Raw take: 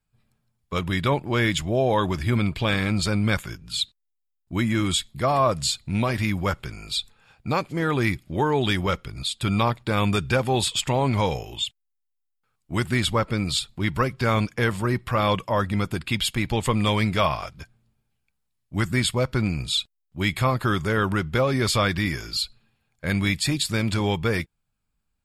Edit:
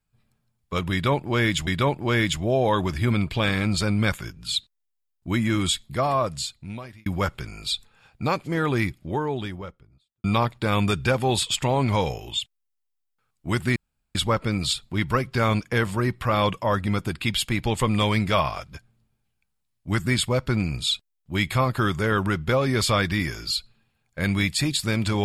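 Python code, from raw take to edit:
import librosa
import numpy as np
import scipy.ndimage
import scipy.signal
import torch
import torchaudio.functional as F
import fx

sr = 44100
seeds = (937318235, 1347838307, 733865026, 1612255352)

y = fx.studio_fade_out(x, sr, start_s=7.77, length_s=1.72)
y = fx.edit(y, sr, fx.repeat(start_s=0.92, length_s=0.75, count=2),
    fx.fade_out_span(start_s=5.1, length_s=1.21),
    fx.insert_room_tone(at_s=13.01, length_s=0.39), tone=tone)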